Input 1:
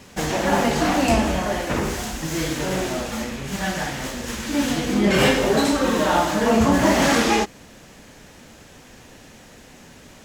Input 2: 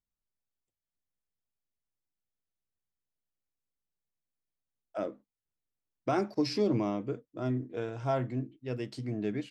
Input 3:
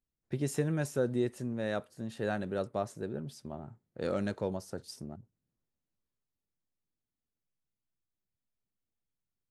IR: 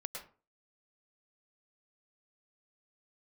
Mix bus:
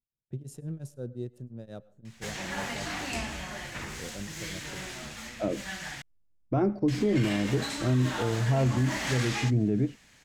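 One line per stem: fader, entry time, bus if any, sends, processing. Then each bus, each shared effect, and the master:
-15.5 dB, 2.05 s, muted 6.02–6.88, no send, graphic EQ 125/250/500/2000/4000/8000 Hz +3/-4/-6/+7/+5/+5 dB
0.0 dB, 0.45 s, send -20 dB, tilt -4.5 dB/oct
-7.5 dB, 0.00 s, send -15 dB, Wiener smoothing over 9 samples; ten-band EQ 125 Hz +8 dB, 1000 Hz -6 dB, 2000 Hz -10 dB; beating tremolo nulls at 5.7 Hz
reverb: on, RT60 0.40 s, pre-delay 99 ms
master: limiter -17.5 dBFS, peak gain reduction 8.5 dB

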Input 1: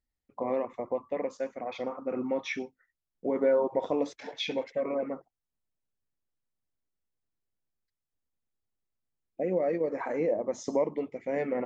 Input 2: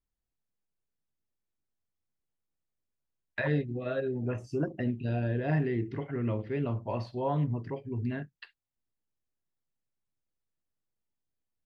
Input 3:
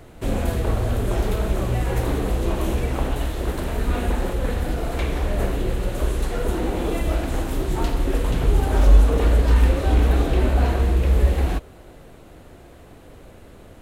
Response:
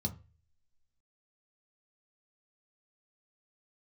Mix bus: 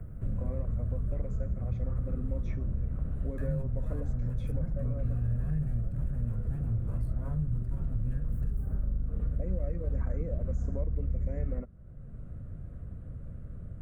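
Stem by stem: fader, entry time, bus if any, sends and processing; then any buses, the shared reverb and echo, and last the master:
+2.0 dB, 0.00 s, no send, dry
-0.5 dB, 0.00 s, no send, minimum comb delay 1.2 ms; sustainer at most 78 dB/s
-10.0 dB, 0.00 s, no send, octaver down 1 oct, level -1 dB; LPF 2200 Hz 12 dB/oct; compressor, threshold -16 dBFS, peak gain reduction 12.5 dB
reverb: off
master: EQ curve 140 Hz 0 dB, 230 Hz -7 dB, 330 Hz -19 dB, 580 Hz -15 dB, 850 Hz -28 dB, 1300 Hz -15 dB, 2200 Hz -25 dB, 3200 Hz -28 dB, 5500 Hz -24 dB, 8800 Hz -3 dB; three-band squash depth 70%

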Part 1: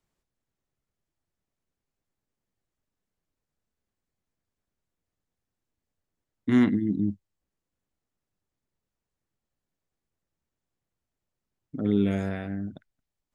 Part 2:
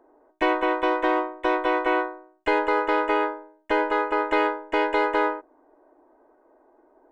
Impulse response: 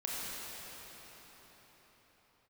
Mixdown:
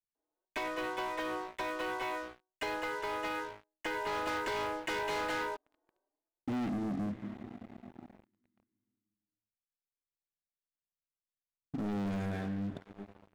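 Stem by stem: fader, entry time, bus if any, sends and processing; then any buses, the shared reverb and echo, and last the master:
-15.5 dB, 0.00 s, send -21.5 dB, dry
3.85 s -20.5 dB -> 4.26 s -12.5 dB, 0.15 s, no send, compressor, threshold -23 dBFS, peak gain reduction 6 dB; high shelf 2200 Hz +10.5 dB; endless flanger 4.5 ms +2 Hz; auto duck -24 dB, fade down 0.55 s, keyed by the first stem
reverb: on, pre-delay 24 ms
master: sample leveller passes 5; compressor 3:1, threshold -35 dBFS, peak gain reduction 5.5 dB

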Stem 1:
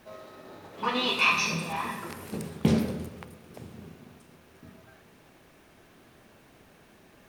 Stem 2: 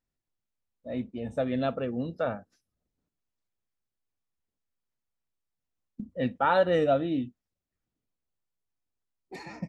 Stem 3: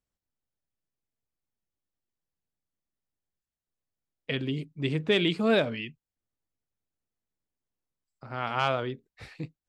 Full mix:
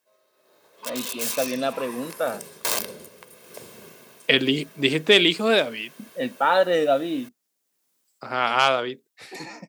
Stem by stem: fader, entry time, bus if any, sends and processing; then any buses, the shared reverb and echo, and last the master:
1.59 s -23.5 dB -> 2.09 s -16 dB -> 3.25 s -16 dB -> 3.51 s -8.5 dB, 0.00 s, no send, wrapped overs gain 20 dB; comb 1.9 ms, depth 48%
-8.5 dB, 0.00 s, no send, dry
+2.0 dB, 0.00 s, no send, auto duck -13 dB, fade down 1.35 s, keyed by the second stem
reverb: off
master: HPF 280 Hz 12 dB/oct; high shelf 4400 Hz +12 dB; AGC gain up to 12.5 dB

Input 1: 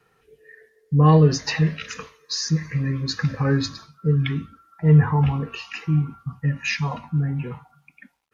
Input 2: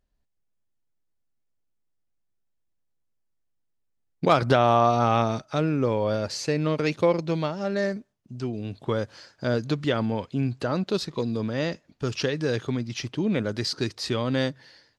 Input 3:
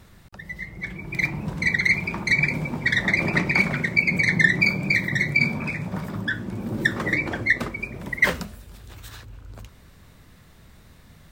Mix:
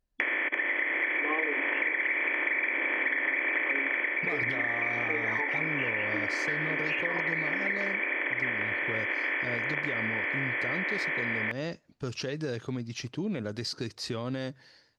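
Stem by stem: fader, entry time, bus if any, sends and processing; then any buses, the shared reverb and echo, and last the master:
+2.0 dB, 0.25 s, bus A, no send, dry
-4.5 dB, 0.00 s, no bus, no send, bell 3400 Hz -3.5 dB 0.24 oct; limiter -17 dBFS, peak gain reduction 10 dB
+2.0 dB, 0.20 s, bus A, no send, per-bin compression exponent 0.2; auto duck -8 dB, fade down 0.20 s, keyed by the second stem
bus A: 0.0 dB, brick-wall FIR band-pass 260–3400 Hz; compressor 2.5:1, threshold -20 dBFS, peak gain reduction 10 dB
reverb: off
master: compressor 3:1, threshold -29 dBFS, peak gain reduction 11 dB

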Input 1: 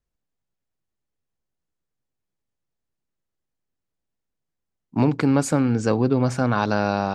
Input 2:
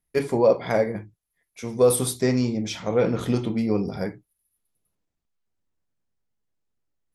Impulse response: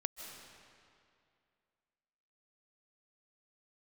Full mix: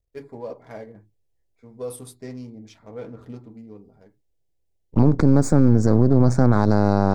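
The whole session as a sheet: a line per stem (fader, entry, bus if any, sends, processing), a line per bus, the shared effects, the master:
+2.5 dB, 0.00 s, no send, half-wave gain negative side -12 dB; low shelf 480 Hz +10 dB; envelope phaser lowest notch 210 Hz, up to 2900 Hz
-13.5 dB, 0.00 s, no send, Wiener smoothing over 15 samples; notch comb 180 Hz; auto duck -20 dB, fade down 1.65 s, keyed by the first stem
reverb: off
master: limiter -5 dBFS, peak gain reduction 7 dB

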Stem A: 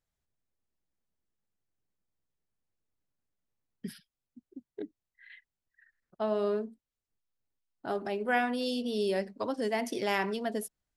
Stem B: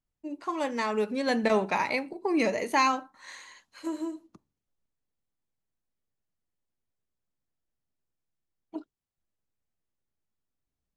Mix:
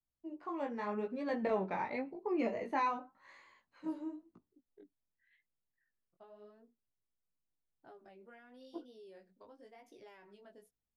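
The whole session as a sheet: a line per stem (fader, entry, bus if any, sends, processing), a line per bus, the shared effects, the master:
-16.5 dB, 0.00 s, no send, de-esser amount 70%; bell 230 Hz -6 dB 0.24 oct; compressor 6:1, threshold -34 dBFS, peak gain reduction 11 dB
-4.5 dB, 0.00 s, no send, LPF 1400 Hz 6 dB/oct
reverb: off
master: high shelf 4500 Hz -8 dB; chorus 0.89 Hz, delay 17 ms, depth 4.1 ms; vibrato 0.94 Hz 80 cents

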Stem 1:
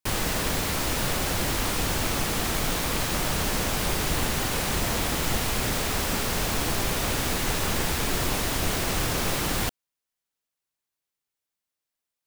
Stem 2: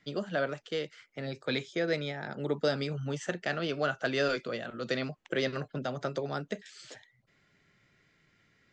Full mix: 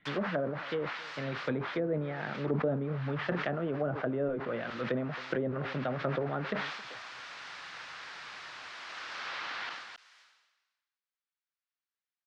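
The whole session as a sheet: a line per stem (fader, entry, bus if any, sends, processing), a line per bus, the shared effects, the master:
-1.0 dB, 0.00 s, no send, echo send -9 dB, Chebyshev band-pass 1400–5000 Hz, order 2; tilt -4 dB/oct; auto duck -11 dB, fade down 1.80 s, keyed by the second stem
+1.5 dB, 0.00 s, no send, echo send -21.5 dB, elliptic low-pass 3600 Hz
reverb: off
echo: echo 0.268 s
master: treble ducked by the level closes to 550 Hz, closed at -26 dBFS; bell 400 Hz -2 dB 0.43 oct; sustainer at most 49 dB/s

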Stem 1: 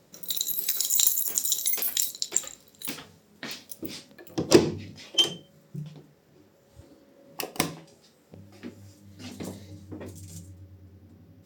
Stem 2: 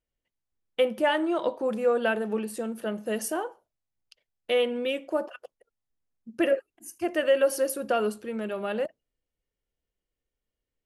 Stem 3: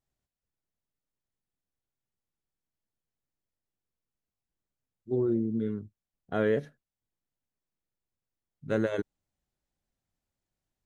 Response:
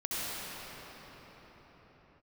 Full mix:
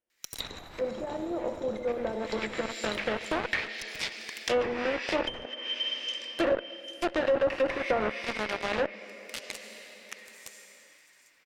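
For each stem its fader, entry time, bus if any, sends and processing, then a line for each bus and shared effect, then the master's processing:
-3.0 dB, 0.10 s, bus A, send -4 dB, echo send -13.5 dB, resonant high-pass 2000 Hz, resonance Q 2.6
-16.5 dB, 0.00 s, bus A, send -12.5 dB, no echo send, per-bin compression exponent 0.6
off
bus A: 0.0 dB, fuzz box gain 44 dB, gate -39 dBFS; limiter -19 dBFS, peak gain reduction 9 dB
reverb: on, pre-delay 61 ms
echo: feedback echo 0.797 s, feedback 29%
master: treble ducked by the level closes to 790 Hz, closed at -19 dBFS

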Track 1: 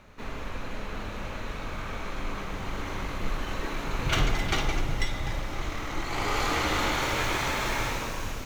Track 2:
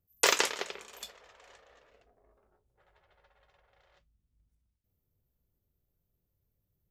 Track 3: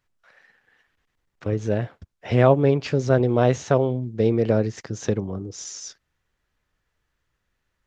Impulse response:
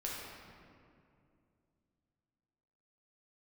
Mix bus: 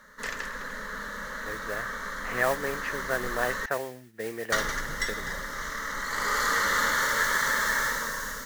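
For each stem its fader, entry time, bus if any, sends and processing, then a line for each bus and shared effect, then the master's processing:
+1.0 dB, 0.00 s, muted 3.66–4.52, no send, tilt +2 dB/oct; fixed phaser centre 500 Hz, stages 8
-16.5 dB, 0.00 s, no send, dry
-5.5 dB, 0.00 s, no send, band-pass 1300 Hz, Q 0.94; modulation noise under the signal 13 dB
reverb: off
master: bell 1800 Hz +14.5 dB 0.42 oct

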